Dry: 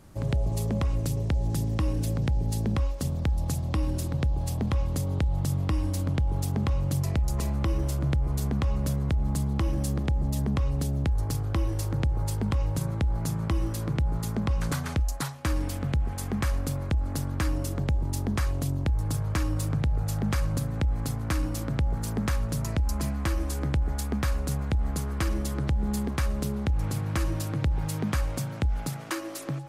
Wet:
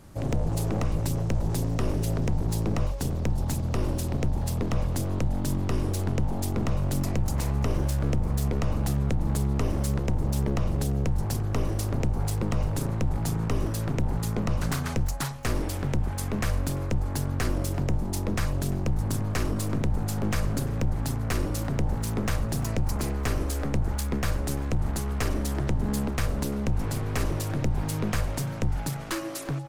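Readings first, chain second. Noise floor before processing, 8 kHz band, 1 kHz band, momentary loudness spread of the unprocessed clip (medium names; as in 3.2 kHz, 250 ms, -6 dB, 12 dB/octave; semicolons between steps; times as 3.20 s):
-33 dBFS, +2.0 dB, +2.0 dB, 2 LU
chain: one-sided wavefolder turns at -28.5 dBFS; delay 344 ms -21 dB; trim +2.5 dB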